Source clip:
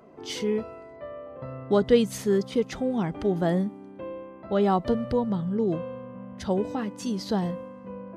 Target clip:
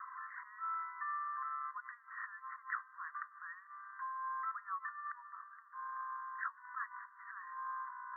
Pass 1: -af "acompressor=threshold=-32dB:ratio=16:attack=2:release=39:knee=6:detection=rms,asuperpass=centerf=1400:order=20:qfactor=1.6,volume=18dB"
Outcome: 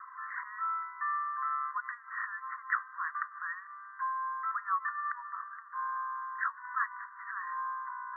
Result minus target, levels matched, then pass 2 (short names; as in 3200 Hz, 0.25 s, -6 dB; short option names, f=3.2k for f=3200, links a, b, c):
compressor: peak gain reduction -10.5 dB
-af "acompressor=threshold=-43dB:ratio=16:attack=2:release=39:knee=6:detection=rms,asuperpass=centerf=1400:order=20:qfactor=1.6,volume=18dB"